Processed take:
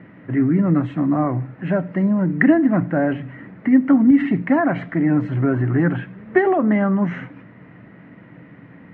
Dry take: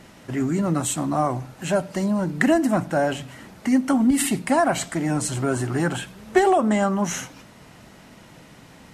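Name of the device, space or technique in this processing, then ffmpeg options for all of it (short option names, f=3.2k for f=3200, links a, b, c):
bass cabinet: -af "highpass=82,equalizer=f=120:t=q:w=4:g=9,equalizer=f=180:t=q:w=4:g=8,equalizer=f=290:t=q:w=4:g=9,equalizer=f=470:t=q:w=4:g=3,equalizer=f=830:t=q:w=4:g=-4,equalizer=f=1.9k:t=q:w=4:g=7,lowpass=f=2.2k:w=0.5412,lowpass=f=2.2k:w=1.3066,volume=-1dB"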